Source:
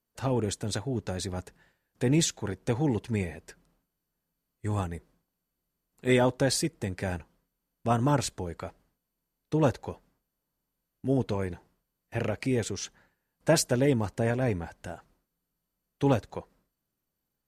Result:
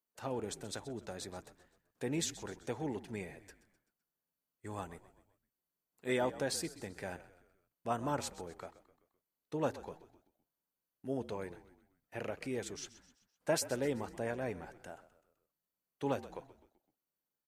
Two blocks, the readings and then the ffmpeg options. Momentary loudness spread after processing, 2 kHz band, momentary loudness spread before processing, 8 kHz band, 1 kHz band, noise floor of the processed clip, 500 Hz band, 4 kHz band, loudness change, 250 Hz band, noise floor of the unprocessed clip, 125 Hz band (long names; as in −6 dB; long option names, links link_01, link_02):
17 LU, −8.5 dB, 16 LU, −9.0 dB, −8.0 dB, below −85 dBFS, −9.0 dB, −9.5 dB, −10.5 dB, −12.0 dB, −84 dBFS, −16.5 dB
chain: -filter_complex "[0:a]lowpass=frequency=1200:poles=1,aemphasis=mode=production:type=riaa,asplit=2[link_01][link_02];[link_02]asplit=4[link_03][link_04][link_05][link_06];[link_03]adelay=128,afreqshift=-50,volume=-16dB[link_07];[link_04]adelay=256,afreqshift=-100,volume=-22.4dB[link_08];[link_05]adelay=384,afreqshift=-150,volume=-28.8dB[link_09];[link_06]adelay=512,afreqshift=-200,volume=-35.1dB[link_10];[link_07][link_08][link_09][link_10]amix=inputs=4:normalize=0[link_11];[link_01][link_11]amix=inputs=2:normalize=0,volume=-5.5dB"